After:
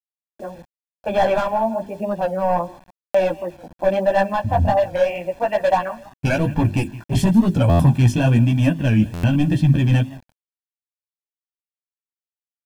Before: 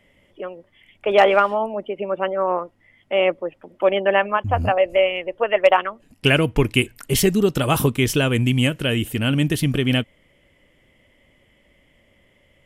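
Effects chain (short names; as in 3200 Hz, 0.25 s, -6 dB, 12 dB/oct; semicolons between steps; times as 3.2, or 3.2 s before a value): gate -47 dBFS, range -9 dB; HPF 100 Hz 6 dB/oct; feedback echo 0.168 s, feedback 35%, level -22 dB; low-pass opened by the level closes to 840 Hz, open at -14.5 dBFS; hard clip -15.5 dBFS, distortion -10 dB; chorus voices 2, 0.98 Hz, delay 14 ms, depth 4 ms; notches 50/100/150/200/250/300/350/400 Hz; requantised 8-bit, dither none; tilt shelf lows +8 dB; comb 1.2 ms, depth 82%; stuck buffer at 3.04/7.69/9.13, samples 512, times 8; record warp 45 rpm, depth 100 cents; gain +1.5 dB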